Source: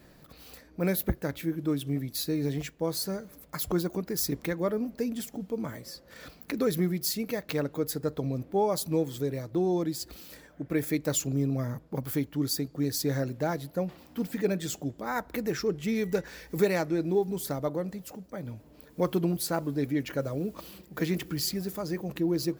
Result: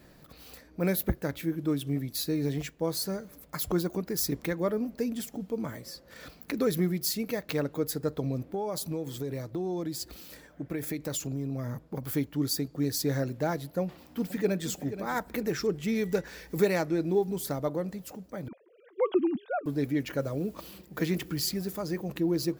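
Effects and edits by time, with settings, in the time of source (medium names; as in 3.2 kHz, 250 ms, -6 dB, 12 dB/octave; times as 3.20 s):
8.54–12.03 s: compression 5:1, threshold -29 dBFS
13.82–14.70 s: echo throw 480 ms, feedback 40%, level -12 dB
18.48–19.66 s: formants replaced by sine waves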